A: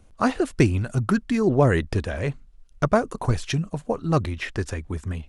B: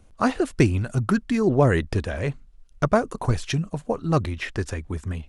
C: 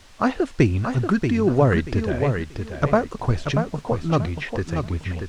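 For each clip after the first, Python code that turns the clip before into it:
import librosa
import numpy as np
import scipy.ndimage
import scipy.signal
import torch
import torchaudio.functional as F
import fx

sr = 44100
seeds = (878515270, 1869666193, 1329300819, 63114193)

y1 = x
y2 = fx.dmg_noise_colour(y1, sr, seeds[0], colour='white', level_db=-47.0)
y2 = fx.air_absorb(y2, sr, metres=92.0)
y2 = fx.echo_feedback(y2, sr, ms=634, feedback_pct=25, wet_db=-6.5)
y2 = y2 * librosa.db_to_amplitude(1.0)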